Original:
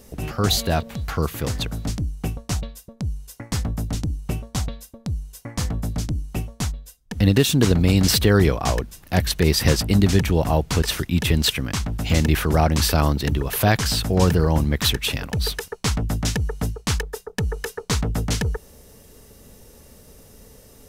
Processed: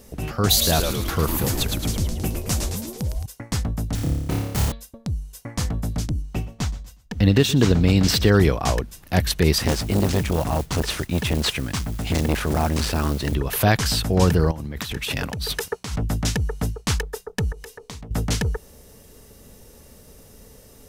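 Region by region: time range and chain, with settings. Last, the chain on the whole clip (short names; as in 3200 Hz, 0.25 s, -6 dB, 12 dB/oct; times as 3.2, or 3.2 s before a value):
0.49–3.26 high shelf 8100 Hz +11.5 dB + frequency-shifting echo 0.109 s, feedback 58%, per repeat -140 Hz, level -4.5 dB
3.95–4.72 self-modulated delay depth 0.95 ms + notch 1100 Hz, Q 29 + flutter echo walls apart 4.9 m, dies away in 0.95 s
6.22–8.37 bell 11000 Hz -10 dB 0.82 oct + feedback echo 0.121 s, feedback 34%, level -18 dB
9.58–13.35 CVSD 64 kbps + modulation noise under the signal 19 dB + core saturation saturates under 480 Hz
14.51–15.98 HPF 66 Hz + negative-ratio compressor -28 dBFS + hard clip -11 dBFS
17.52–18.11 bell 1400 Hz -7.5 dB 0.34 oct + compressor 4:1, threshold -36 dBFS + notches 60/120/180/240/300/360/420/480 Hz
whole clip: dry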